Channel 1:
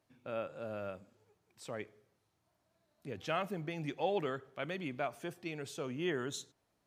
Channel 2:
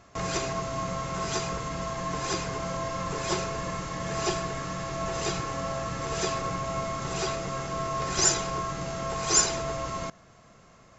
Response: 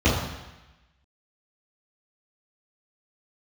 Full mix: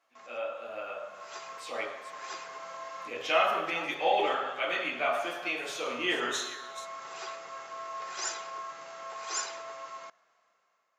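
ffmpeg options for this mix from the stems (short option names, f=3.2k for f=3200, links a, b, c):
-filter_complex "[0:a]lowshelf=f=330:g=-7.5,volume=-3dB,asplit=4[a][b][c][d];[b]volume=-7.5dB[e];[c]volume=-8dB[f];[1:a]lowpass=f=2.5k:p=1,dynaudnorm=f=180:g=11:m=4dB,volume=-15.5dB[g];[d]apad=whole_len=484658[h];[g][h]sidechaincompress=threshold=-52dB:ratio=8:attack=16:release=567[i];[2:a]atrim=start_sample=2205[j];[e][j]afir=irnorm=-1:irlink=0[k];[f]aecho=0:1:436:1[l];[a][i][k][l]amix=inputs=4:normalize=0,highpass=870,dynaudnorm=f=490:g=5:m=7dB"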